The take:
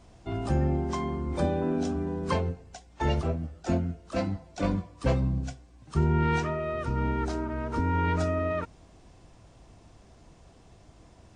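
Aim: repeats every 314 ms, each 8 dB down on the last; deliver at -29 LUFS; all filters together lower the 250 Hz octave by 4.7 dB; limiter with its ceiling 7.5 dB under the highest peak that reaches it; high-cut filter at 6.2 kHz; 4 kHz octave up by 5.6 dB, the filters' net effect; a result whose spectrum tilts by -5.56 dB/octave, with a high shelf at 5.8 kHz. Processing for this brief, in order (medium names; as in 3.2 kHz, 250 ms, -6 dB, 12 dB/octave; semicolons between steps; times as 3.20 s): low-pass 6.2 kHz; peaking EQ 250 Hz -7 dB; peaking EQ 4 kHz +5.5 dB; treble shelf 5.8 kHz +8 dB; peak limiter -21 dBFS; feedback delay 314 ms, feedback 40%, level -8 dB; trim +3.5 dB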